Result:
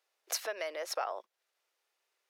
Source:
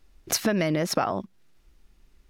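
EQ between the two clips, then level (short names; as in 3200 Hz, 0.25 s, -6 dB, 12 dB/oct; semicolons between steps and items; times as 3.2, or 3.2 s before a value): steep high-pass 470 Hz 36 dB/oct; -9.0 dB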